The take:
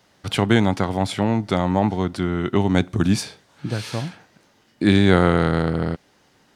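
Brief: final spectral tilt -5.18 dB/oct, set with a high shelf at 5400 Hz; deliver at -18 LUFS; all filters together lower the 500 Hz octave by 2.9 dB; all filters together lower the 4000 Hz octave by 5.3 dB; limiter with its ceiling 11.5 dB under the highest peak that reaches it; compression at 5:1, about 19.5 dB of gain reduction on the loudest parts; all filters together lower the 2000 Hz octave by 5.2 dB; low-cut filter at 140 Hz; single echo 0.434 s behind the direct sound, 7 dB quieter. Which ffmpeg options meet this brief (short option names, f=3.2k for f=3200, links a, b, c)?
-af "highpass=140,equalizer=f=500:t=o:g=-3.5,equalizer=f=2k:t=o:g=-6,equalizer=f=4k:t=o:g=-7,highshelf=f=5.4k:g=6.5,acompressor=threshold=-36dB:ratio=5,alimiter=level_in=8dB:limit=-24dB:level=0:latency=1,volume=-8dB,aecho=1:1:434:0.447,volume=24.5dB"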